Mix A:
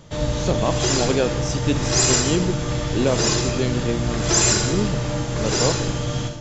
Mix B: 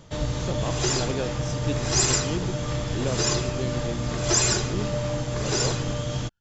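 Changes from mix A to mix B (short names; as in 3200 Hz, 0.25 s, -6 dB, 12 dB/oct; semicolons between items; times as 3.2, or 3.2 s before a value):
speech -8.5 dB; reverb: off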